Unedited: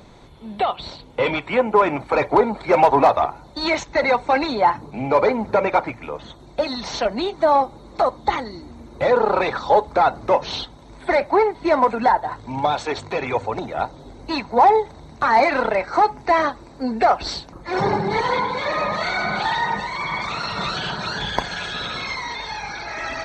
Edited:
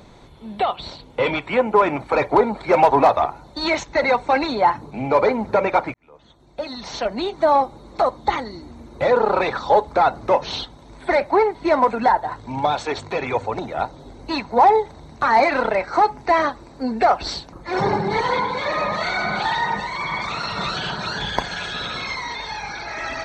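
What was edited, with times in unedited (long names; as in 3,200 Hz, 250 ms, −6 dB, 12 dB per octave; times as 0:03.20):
0:05.94–0:07.38: fade in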